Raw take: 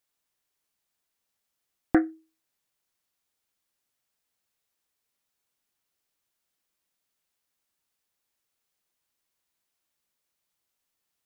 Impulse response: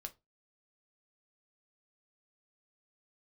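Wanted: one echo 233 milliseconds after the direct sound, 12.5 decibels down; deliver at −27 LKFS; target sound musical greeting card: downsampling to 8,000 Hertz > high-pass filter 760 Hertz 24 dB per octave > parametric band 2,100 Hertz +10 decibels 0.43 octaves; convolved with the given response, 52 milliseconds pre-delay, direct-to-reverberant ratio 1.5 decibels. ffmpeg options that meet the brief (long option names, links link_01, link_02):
-filter_complex "[0:a]aecho=1:1:233:0.237,asplit=2[link_01][link_02];[1:a]atrim=start_sample=2205,adelay=52[link_03];[link_02][link_03]afir=irnorm=-1:irlink=0,volume=2.5dB[link_04];[link_01][link_04]amix=inputs=2:normalize=0,aresample=8000,aresample=44100,highpass=frequency=760:width=0.5412,highpass=frequency=760:width=1.3066,equalizer=frequency=2100:width_type=o:width=0.43:gain=10,volume=7dB"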